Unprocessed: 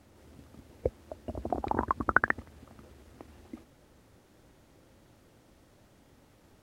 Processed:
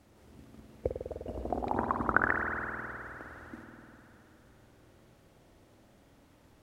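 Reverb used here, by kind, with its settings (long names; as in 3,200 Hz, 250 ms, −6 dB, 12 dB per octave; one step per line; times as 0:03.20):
spring reverb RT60 3.3 s, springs 50 ms, chirp 40 ms, DRR 1.5 dB
level −2.5 dB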